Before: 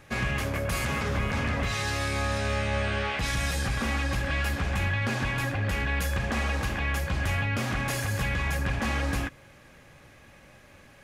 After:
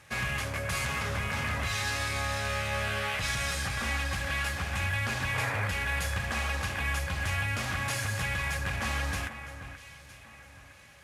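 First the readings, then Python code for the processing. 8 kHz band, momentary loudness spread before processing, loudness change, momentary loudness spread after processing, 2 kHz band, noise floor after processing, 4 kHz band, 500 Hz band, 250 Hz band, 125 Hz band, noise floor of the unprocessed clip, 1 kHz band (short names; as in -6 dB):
+1.0 dB, 1 LU, -2.0 dB, 11 LU, -0.5 dB, -51 dBFS, 0.0 dB, -5.0 dB, -8.5 dB, -4.5 dB, -53 dBFS, -1.5 dB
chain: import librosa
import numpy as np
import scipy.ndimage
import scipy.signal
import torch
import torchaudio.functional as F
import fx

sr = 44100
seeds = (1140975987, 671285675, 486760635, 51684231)

p1 = fx.cvsd(x, sr, bps=64000)
p2 = scipy.signal.sosfilt(scipy.signal.butter(2, 76.0, 'highpass', fs=sr, output='sos'), p1)
p3 = fx.peak_eq(p2, sr, hz=290.0, db=-10.0, octaves=2.1)
p4 = fx.spec_paint(p3, sr, seeds[0], shape='noise', start_s=5.34, length_s=0.34, low_hz=400.0, high_hz=2500.0, level_db=-35.0)
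y = p4 + fx.echo_alternate(p4, sr, ms=480, hz=2400.0, feedback_pct=55, wet_db=-10.5, dry=0)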